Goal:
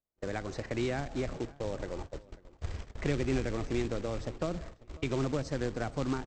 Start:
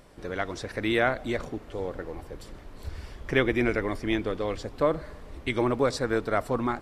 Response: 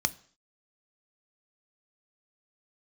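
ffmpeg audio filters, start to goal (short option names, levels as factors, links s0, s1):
-filter_complex "[0:a]agate=range=0.00794:threshold=0.0112:ratio=16:detection=peak,highshelf=f=2500:g=-11.5,acrossover=split=240|5300[s0][s1][s2];[s1]acompressor=threshold=0.02:ratio=8[s3];[s0][s3][s2]amix=inputs=3:normalize=0,acrusher=bits=3:mode=log:mix=0:aa=0.000001,asplit=2[s4][s5];[s5]adelay=592,lowpass=f=3100:p=1,volume=0.0794,asplit=2[s6][s7];[s7]adelay=592,lowpass=f=3100:p=1,volume=0.26[s8];[s6][s8]amix=inputs=2:normalize=0[s9];[s4][s9]amix=inputs=2:normalize=0,aresample=16000,aresample=44100,asetrate=48000,aresample=44100"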